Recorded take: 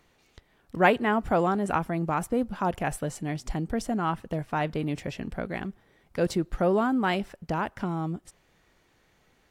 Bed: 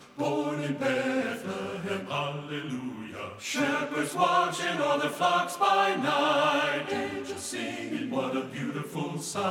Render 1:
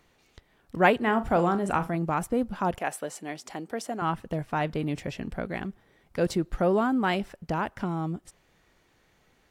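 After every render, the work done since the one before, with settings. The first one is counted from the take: 1.01–1.96 flutter echo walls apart 7 m, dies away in 0.22 s; 2.78–4.02 HPF 360 Hz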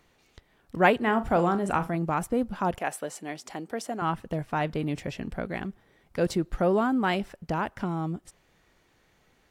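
nothing audible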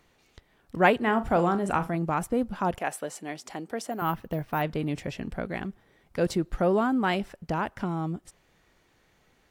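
3.91–4.62 careless resampling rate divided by 3×, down filtered, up hold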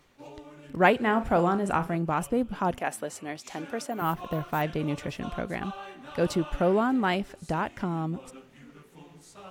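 add bed -17.5 dB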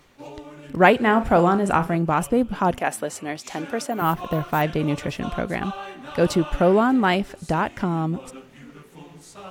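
gain +6.5 dB; limiter -3 dBFS, peak gain reduction 1.5 dB

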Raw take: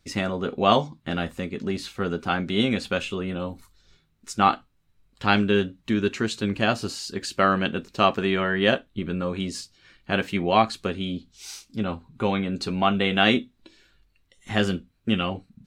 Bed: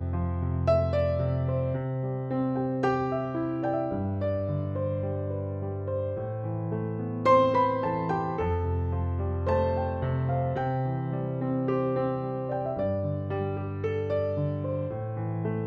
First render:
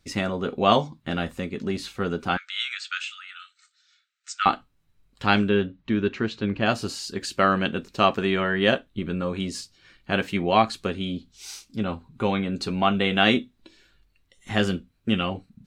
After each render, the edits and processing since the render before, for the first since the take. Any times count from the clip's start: 2.37–4.46 brick-wall FIR band-pass 1200–8500 Hz; 5.49–6.66 air absorption 190 m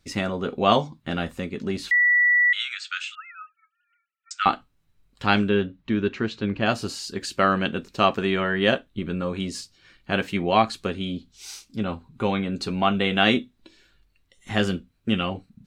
1.91–2.53 bleep 1950 Hz -15 dBFS; 3.15–4.31 sine-wave speech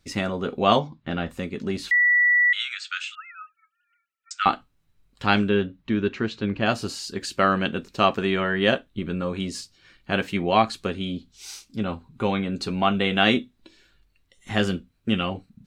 0.79–1.31 air absorption 140 m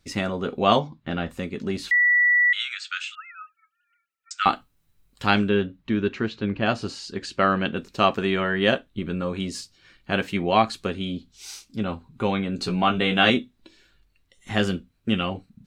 4.38–5.31 high shelf 7700 Hz +10.5 dB; 6.28–7.77 air absorption 72 m; 12.57–13.3 doubler 17 ms -4 dB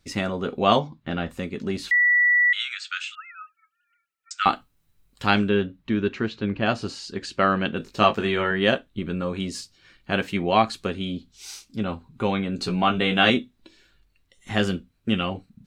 7.78–8.51 doubler 19 ms -5.5 dB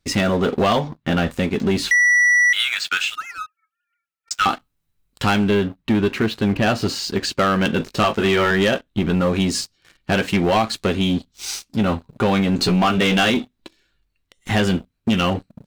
compressor 5:1, threshold -22 dBFS, peak gain reduction 9.5 dB; sample leveller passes 3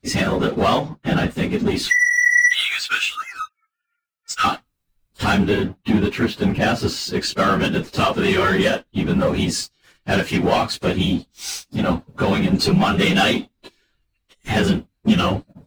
phase scrambler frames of 50 ms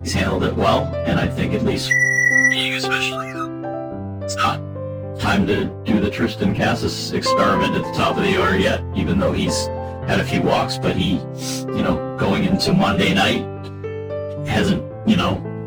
add bed +1.5 dB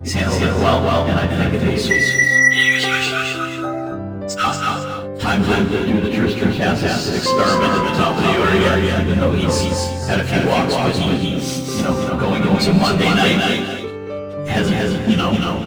on a send: echo 0.231 s -3.5 dB; on the sum: non-linear reverb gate 0.3 s rising, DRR 6 dB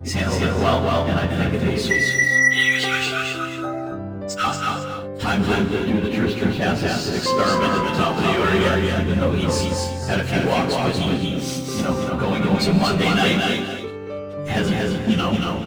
gain -3.5 dB

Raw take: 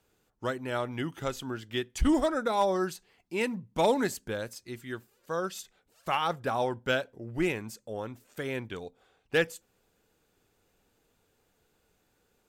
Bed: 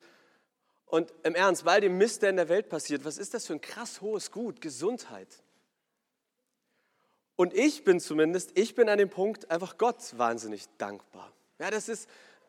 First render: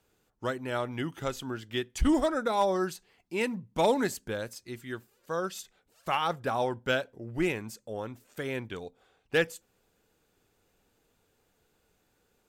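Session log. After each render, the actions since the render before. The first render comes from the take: nothing audible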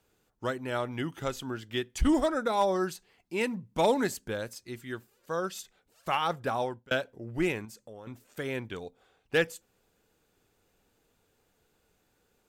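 6.42–6.91 fade out equal-power; 7.65–8.07 compressor 4:1, threshold -44 dBFS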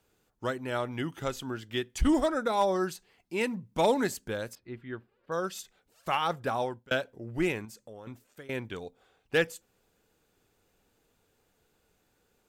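4.55–5.32 air absorption 430 m; 8.08–8.49 fade out, to -19.5 dB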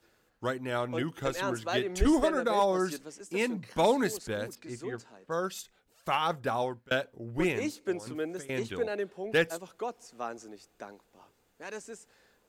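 add bed -9.5 dB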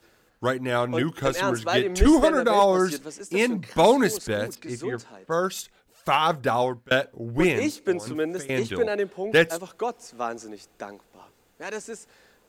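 gain +7.5 dB

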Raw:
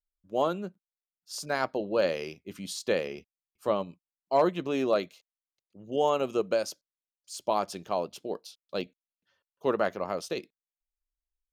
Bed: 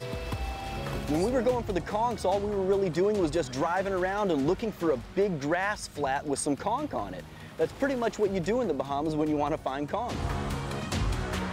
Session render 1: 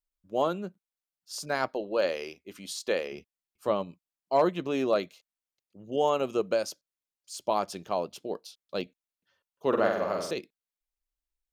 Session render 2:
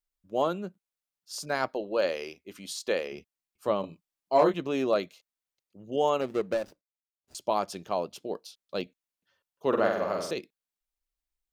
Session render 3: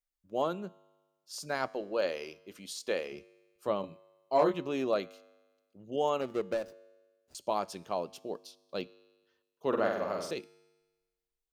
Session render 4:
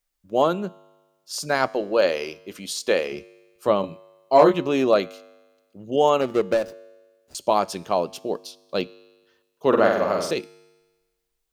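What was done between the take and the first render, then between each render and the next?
1.68–3.12 bell 130 Hz -14 dB 1.2 oct; 9.68–10.31 flutter echo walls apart 8.1 m, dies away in 0.76 s
3.81–4.54 doubler 25 ms -3 dB; 6.21–7.35 median filter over 41 samples
resonator 51 Hz, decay 1.3 s, harmonics odd, mix 40%
gain +11.5 dB

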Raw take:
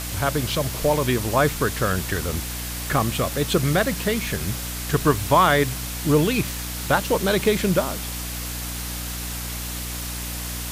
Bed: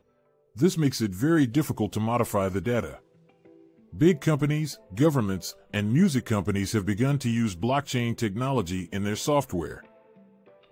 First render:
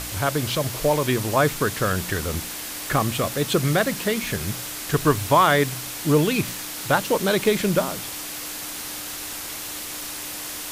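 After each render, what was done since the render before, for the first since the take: de-hum 60 Hz, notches 4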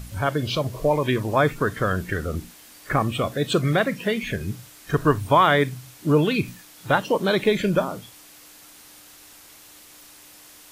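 noise print and reduce 15 dB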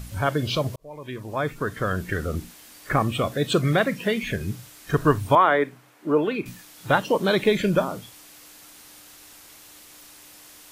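0.76–2.23 fade in; 5.35–6.46 three-band isolator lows -22 dB, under 240 Hz, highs -15 dB, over 2200 Hz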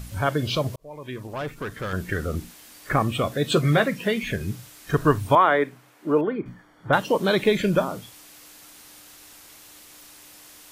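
1.27–1.93 tube stage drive 25 dB, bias 0.5; 3.45–3.88 doubler 13 ms -6.5 dB; 6.21–6.93 polynomial smoothing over 41 samples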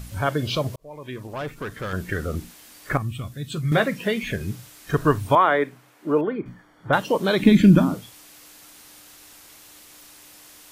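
2.97–3.72 EQ curve 120 Hz 0 dB, 190 Hz -7 dB, 340 Hz -13 dB, 530 Hz -21 dB, 1200 Hz -14 dB, 9500 Hz -6 dB; 7.4–7.94 resonant low shelf 360 Hz +8.5 dB, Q 3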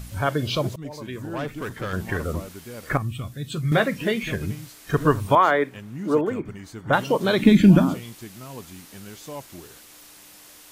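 add bed -13 dB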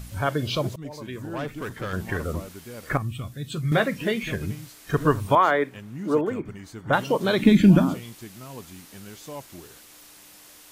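gain -1.5 dB

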